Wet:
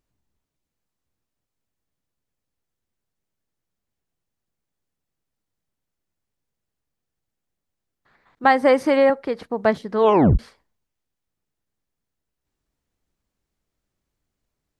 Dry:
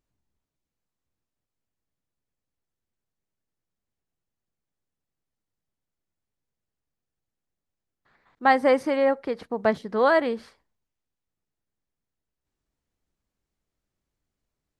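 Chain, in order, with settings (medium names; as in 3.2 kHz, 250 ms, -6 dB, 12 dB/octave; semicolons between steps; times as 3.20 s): 8.44–9.10 s: three bands compressed up and down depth 70%; 9.99 s: tape stop 0.40 s; trim +3.5 dB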